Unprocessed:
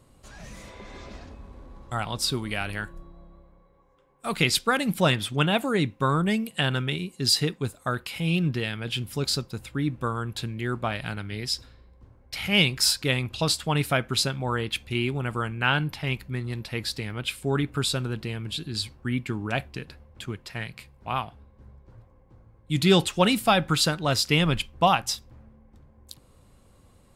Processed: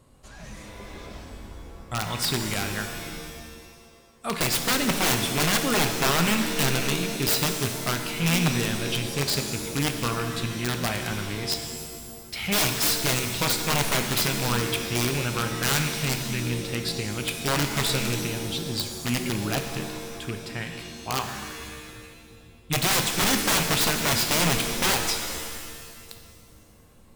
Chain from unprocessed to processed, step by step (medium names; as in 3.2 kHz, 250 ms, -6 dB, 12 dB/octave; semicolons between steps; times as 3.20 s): rattle on loud lows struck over -29 dBFS, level -22 dBFS; integer overflow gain 17.5 dB; pitch-shifted reverb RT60 1.7 s, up +7 st, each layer -2 dB, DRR 6 dB